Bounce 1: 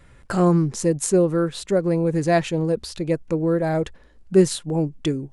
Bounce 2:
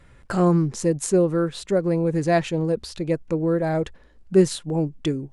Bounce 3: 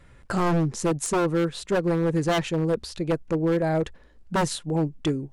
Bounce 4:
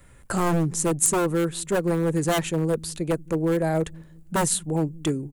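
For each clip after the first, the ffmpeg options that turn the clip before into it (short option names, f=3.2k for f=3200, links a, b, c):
-af "highshelf=f=8.5k:g=-5,volume=-1dB"
-af "aeval=exprs='0.501*(cos(1*acos(clip(val(0)/0.501,-1,1)))-cos(1*PI/2))+0.00631*(cos(7*acos(clip(val(0)/0.501,-1,1)))-cos(7*PI/2))':c=same,aeval=exprs='0.15*(abs(mod(val(0)/0.15+3,4)-2)-1)':c=same"
-filter_complex "[0:a]acrossover=split=260|1200|3900[a][b][c][d];[a]aecho=1:1:181|362|543|724:0.178|0.0782|0.0344|0.0151[e];[d]aexciter=amount=3.6:drive=6.9:freq=7k[f];[e][b][c][f]amix=inputs=4:normalize=0"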